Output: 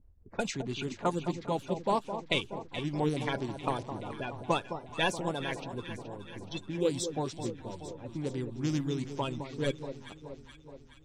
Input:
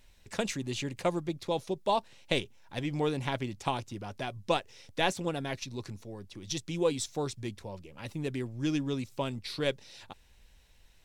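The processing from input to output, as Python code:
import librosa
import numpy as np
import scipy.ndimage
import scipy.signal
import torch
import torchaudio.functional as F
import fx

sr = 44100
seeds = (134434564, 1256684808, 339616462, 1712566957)

p1 = fx.spec_quant(x, sr, step_db=30)
p2 = fx.env_lowpass(p1, sr, base_hz=350.0, full_db=-28.0)
y = p2 + fx.echo_alternate(p2, sr, ms=212, hz=1100.0, feedback_pct=76, wet_db=-9.0, dry=0)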